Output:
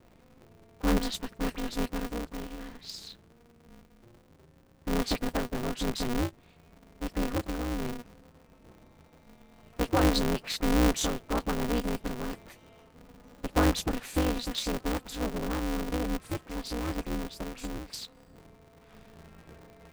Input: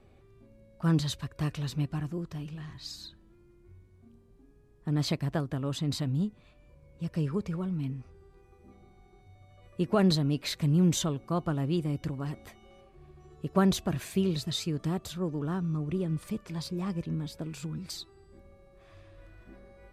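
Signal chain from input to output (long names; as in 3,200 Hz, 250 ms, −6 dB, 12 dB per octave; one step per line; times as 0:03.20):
all-pass dispersion highs, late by 41 ms, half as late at 2,000 Hz
ring modulator with a square carrier 120 Hz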